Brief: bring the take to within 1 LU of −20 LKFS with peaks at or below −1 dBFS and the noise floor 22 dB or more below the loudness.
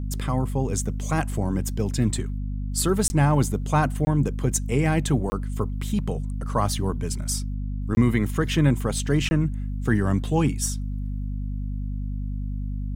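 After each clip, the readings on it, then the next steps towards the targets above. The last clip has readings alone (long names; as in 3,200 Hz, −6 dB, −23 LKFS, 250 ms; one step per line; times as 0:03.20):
number of dropouts 5; longest dropout 20 ms; mains hum 50 Hz; hum harmonics up to 250 Hz; level of the hum −26 dBFS; integrated loudness −25.0 LKFS; sample peak −7.5 dBFS; target loudness −20.0 LKFS
→ repair the gap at 0:03.08/0:04.05/0:05.30/0:07.95/0:09.29, 20 ms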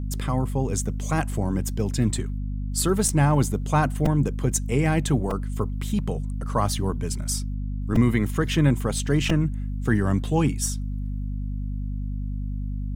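number of dropouts 0; mains hum 50 Hz; hum harmonics up to 250 Hz; level of the hum −26 dBFS
→ mains-hum notches 50/100/150/200/250 Hz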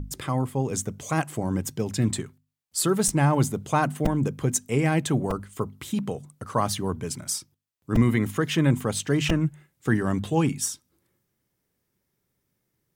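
mains hum none found; integrated loudness −26.0 LKFS; sample peak −9.0 dBFS; target loudness −20.0 LKFS
→ level +6 dB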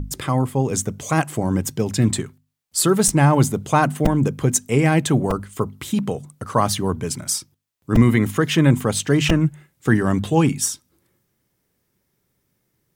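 integrated loudness −20.0 LKFS; sample peak −3.0 dBFS; background noise floor −72 dBFS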